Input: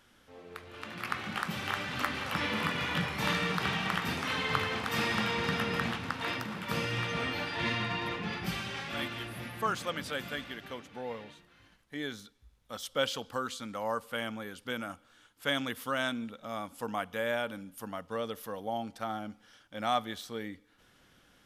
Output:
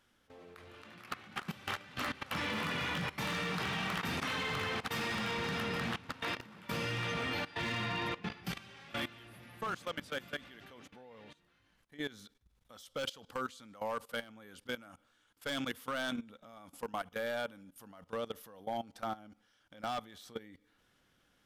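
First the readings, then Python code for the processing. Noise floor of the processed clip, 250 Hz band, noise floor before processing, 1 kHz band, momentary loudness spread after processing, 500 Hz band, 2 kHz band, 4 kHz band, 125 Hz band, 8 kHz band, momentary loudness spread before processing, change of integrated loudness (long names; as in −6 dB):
−72 dBFS, −5.0 dB, −64 dBFS, −5.0 dB, 19 LU, −4.5 dB, −4.5 dB, −4.5 dB, −4.5 dB, −4.5 dB, 12 LU, −4.0 dB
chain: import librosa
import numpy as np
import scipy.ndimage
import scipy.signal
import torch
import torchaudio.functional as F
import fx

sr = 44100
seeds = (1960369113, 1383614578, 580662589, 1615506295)

y = np.clip(x, -10.0 ** (-27.0 / 20.0), 10.0 ** (-27.0 / 20.0))
y = fx.level_steps(y, sr, step_db=18)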